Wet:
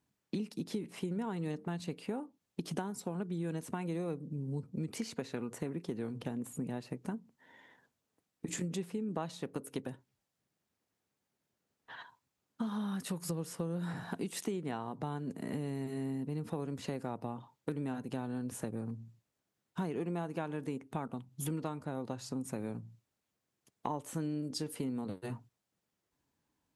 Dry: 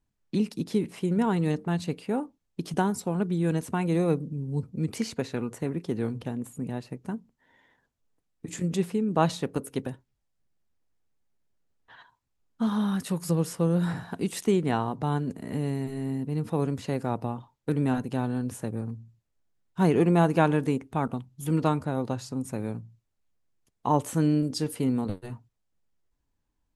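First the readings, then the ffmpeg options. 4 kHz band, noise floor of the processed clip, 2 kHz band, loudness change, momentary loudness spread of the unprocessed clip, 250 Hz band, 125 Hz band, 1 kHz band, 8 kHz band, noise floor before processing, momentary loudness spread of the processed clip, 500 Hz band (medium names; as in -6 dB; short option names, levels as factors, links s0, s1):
-7.5 dB, under -85 dBFS, -10.0 dB, -11.0 dB, 11 LU, -10.5 dB, -11.5 dB, -12.5 dB, -5.5 dB, -78 dBFS, 6 LU, -11.0 dB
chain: -af "highpass=130,acompressor=threshold=0.0126:ratio=6,volume=1.41"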